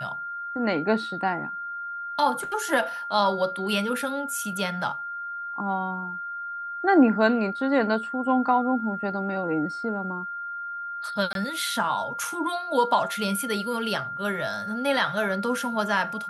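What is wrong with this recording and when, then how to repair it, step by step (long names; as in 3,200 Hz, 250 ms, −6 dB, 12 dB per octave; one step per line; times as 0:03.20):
whistle 1,400 Hz −31 dBFS
0:11.33–0:11.35: drop-out 22 ms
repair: notch filter 1,400 Hz, Q 30
repair the gap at 0:11.33, 22 ms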